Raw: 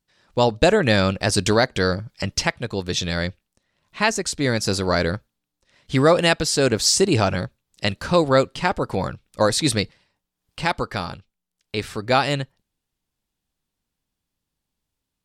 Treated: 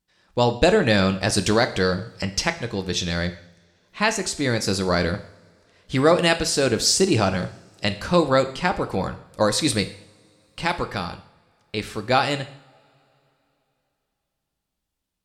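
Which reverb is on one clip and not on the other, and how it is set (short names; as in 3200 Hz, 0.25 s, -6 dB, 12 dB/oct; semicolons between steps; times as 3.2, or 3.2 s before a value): two-slope reverb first 0.58 s, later 3.3 s, from -26 dB, DRR 8.5 dB; gain -1.5 dB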